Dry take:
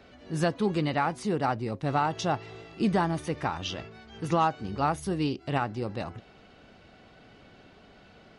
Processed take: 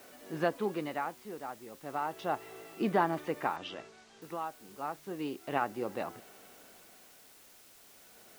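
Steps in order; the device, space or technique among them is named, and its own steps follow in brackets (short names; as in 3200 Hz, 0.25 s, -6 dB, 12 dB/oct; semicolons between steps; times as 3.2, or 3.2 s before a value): shortwave radio (BPF 300–2500 Hz; tremolo 0.33 Hz, depth 79%; white noise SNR 21 dB); 3.56–4.22 LPF 7000 Hz 24 dB/oct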